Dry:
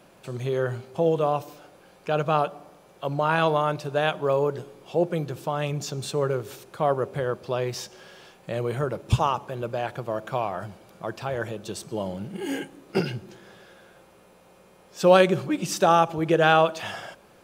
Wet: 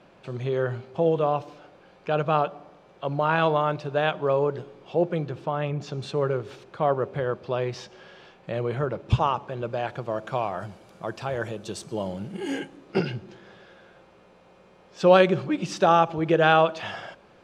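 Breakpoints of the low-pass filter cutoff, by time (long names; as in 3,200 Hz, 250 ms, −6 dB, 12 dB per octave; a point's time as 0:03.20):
0:05.16 4,000 Hz
0:05.74 2,200 Hz
0:05.95 3,800 Hz
0:09.29 3,800 Hz
0:10.66 9,100 Hz
0:12.31 9,100 Hz
0:12.97 4,500 Hz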